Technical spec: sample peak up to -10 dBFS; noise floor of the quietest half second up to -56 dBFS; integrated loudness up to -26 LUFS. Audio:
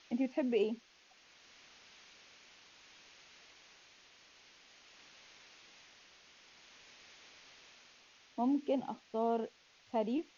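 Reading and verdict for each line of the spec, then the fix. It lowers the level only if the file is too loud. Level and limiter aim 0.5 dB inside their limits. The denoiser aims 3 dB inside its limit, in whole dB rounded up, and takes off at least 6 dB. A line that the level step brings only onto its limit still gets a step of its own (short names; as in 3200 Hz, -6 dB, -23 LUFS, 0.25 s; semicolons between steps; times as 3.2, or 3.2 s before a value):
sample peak -21.5 dBFS: OK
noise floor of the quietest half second -65 dBFS: OK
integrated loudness -36.0 LUFS: OK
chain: none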